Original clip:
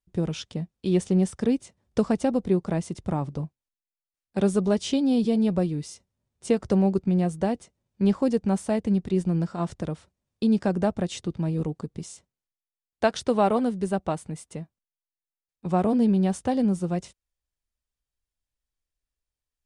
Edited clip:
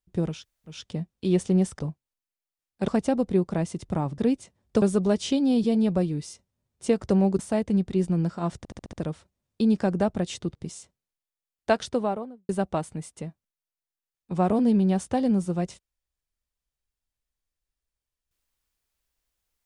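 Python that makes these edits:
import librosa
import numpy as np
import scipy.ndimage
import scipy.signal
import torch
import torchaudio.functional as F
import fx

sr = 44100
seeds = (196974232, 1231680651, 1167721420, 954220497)

y = fx.studio_fade_out(x, sr, start_s=13.05, length_s=0.78)
y = fx.edit(y, sr, fx.insert_room_tone(at_s=0.37, length_s=0.39, crossfade_s=0.24),
    fx.swap(start_s=1.4, length_s=0.64, other_s=3.34, other_length_s=1.09),
    fx.cut(start_s=7.0, length_s=1.56),
    fx.stutter(start_s=9.75, slice_s=0.07, count=6),
    fx.cut(start_s=11.37, length_s=0.52), tone=tone)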